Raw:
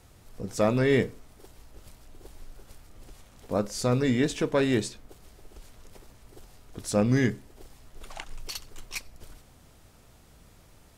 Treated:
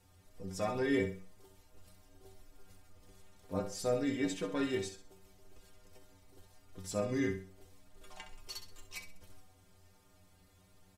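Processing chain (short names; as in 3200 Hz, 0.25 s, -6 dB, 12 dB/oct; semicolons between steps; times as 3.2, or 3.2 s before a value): metallic resonator 91 Hz, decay 0.32 s, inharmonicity 0.008; on a send: feedback echo 65 ms, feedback 32%, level -10 dB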